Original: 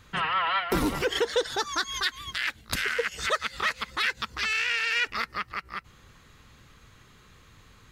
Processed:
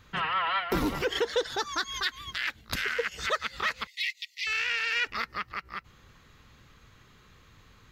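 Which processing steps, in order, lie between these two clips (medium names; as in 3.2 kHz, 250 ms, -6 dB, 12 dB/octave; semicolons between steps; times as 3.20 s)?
3.87–4.47 s: Chebyshev high-pass 1.9 kHz, order 10; peaking EQ 9.2 kHz -10 dB 0.48 oct; trim -2 dB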